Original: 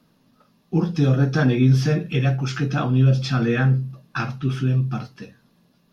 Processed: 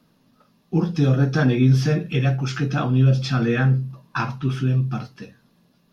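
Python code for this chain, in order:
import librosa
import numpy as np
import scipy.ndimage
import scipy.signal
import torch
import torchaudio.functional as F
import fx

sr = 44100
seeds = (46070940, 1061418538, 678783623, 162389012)

y = fx.peak_eq(x, sr, hz=980.0, db=13.5, octaves=0.23, at=(3.9, 4.51))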